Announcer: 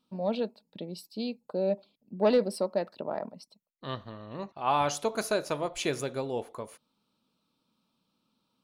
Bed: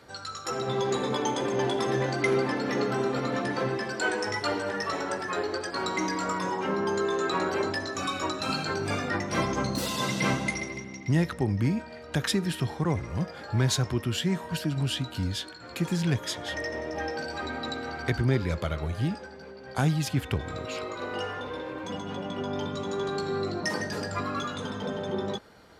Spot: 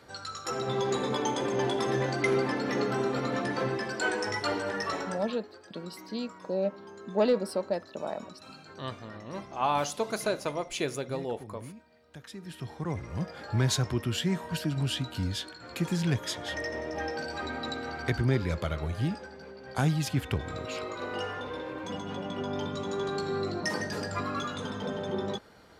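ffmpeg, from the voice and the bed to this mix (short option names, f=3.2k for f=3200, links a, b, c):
-filter_complex "[0:a]adelay=4950,volume=-1dB[a];[1:a]volume=16.5dB,afade=t=out:st=4.92:d=0.47:silence=0.125893,afade=t=in:st=12.31:d=1.14:silence=0.125893[b];[a][b]amix=inputs=2:normalize=0"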